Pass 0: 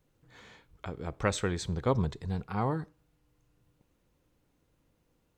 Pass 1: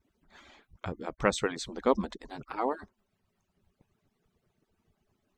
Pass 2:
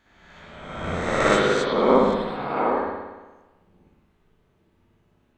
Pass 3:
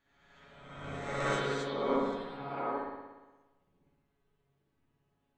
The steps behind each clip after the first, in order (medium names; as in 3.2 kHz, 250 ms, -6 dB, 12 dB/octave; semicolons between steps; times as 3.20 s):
harmonic-percussive separation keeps percussive; treble shelf 7.5 kHz -8 dB; trim +3.5 dB
reverse spectral sustain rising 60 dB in 1.32 s; hum notches 60/120 Hz; spring tank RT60 1.2 s, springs 58 ms, chirp 45 ms, DRR -7.5 dB; trim -2 dB
feedback comb 140 Hz, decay 0.18 s, harmonics all, mix 90%; trim -4.5 dB